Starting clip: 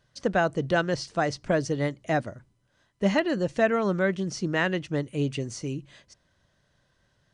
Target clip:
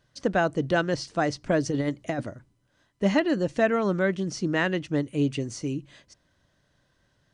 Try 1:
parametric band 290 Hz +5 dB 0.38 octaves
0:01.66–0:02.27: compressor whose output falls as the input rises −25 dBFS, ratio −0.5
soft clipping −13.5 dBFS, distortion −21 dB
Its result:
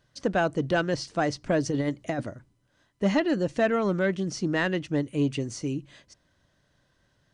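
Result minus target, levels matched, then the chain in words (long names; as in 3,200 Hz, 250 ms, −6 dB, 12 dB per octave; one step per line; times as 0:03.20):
soft clipping: distortion +17 dB
parametric band 290 Hz +5 dB 0.38 octaves
0:01.66–0:02.27: compressor whose output falls as the input rises −25 dBFS, ratio −0.5
soft clipping −3.5 dBFS, distortion −38 dB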